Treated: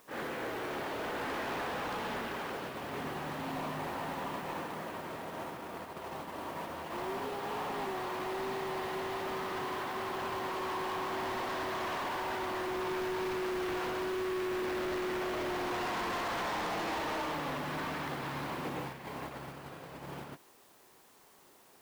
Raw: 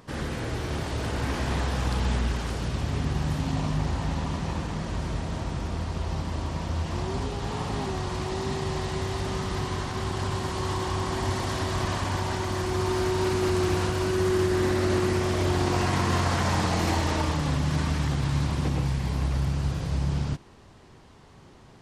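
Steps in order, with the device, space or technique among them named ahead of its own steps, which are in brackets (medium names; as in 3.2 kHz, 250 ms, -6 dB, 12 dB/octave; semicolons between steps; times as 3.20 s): aircraft radio (band-pass 380–2500 Hz; hard clipper -33 dBFS, distortion -8 dB; white noise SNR 20 dB; gate -39 dBFS, range -7 dB)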